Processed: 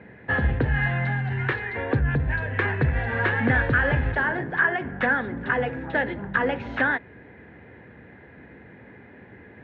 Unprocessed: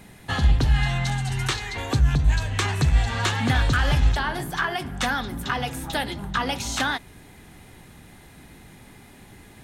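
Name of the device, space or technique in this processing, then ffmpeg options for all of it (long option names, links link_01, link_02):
bass cabinet: -af "highpass=frequency=75:width=0.5412,highpass=frequency=75:width=1.3066,equalizer=frequency=100:width_type=q:width=4:gain=-4,equalizer=frequency=160:width_type=q:width=4:gain=-5,equalizer=frequency=490:width_type=q:width=4:gain=8,equalizer=frequency=790:width_type=q:width=4:gain=-4,equalizer=frequency=1200:width_type=q:width=4:gain=-7,equalizer=frequency=1700:width_type=q:width=4:gain=7,lowpass=frequency=2100:width=0.5412,lowpass=frequency=2100:width=1.3066,volume=2dB"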